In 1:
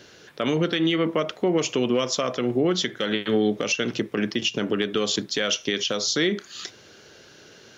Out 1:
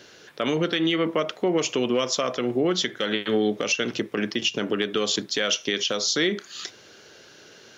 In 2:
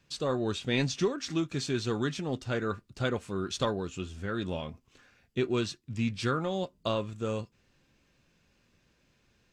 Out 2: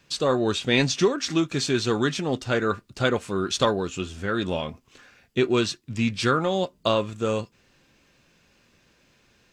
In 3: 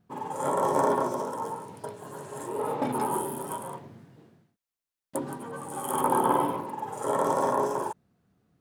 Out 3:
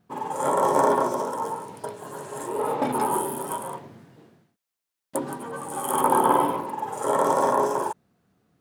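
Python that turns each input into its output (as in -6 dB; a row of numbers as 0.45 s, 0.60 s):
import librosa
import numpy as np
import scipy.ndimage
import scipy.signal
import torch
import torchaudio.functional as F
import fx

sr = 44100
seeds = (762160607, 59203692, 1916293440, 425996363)

y = fx.low_shelf(x, sr, hz=190.0, db=-7.0)
y = y * 10.0 ** (-26 / 20.0) / np.sqrt(np.mean(np.square(y)))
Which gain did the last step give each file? +0.5 dB, +9.0 dB, +5.0 dB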